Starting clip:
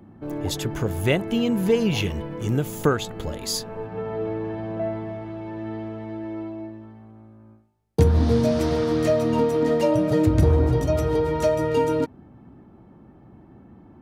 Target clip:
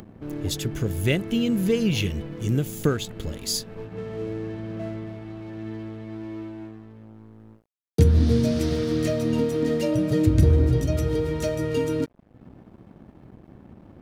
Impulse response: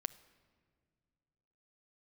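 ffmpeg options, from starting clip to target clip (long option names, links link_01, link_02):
-af "equalizer=frequency=890:width=1.1:gain=-14.5,acompressor=mode=upward:threshold=-35dB:ratio=2.5,aeval=exprs='sgn(val(0))*max(abs(val(0))-0.00447,0)':channel_layout=same,volume=1.5dB"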